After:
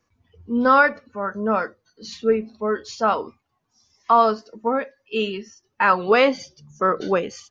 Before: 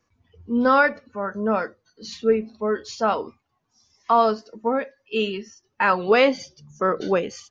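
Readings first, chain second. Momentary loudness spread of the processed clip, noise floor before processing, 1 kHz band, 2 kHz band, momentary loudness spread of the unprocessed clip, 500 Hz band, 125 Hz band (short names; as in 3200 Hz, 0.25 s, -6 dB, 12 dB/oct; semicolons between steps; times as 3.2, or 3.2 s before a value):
13 LU, -74 dBFS, +2.5 dB, +1.5 dB, 16 LU, +0.5 dB, n/a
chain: dynamic EQ 1200 Hz, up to +4 dB, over -33 dBFS, Q 2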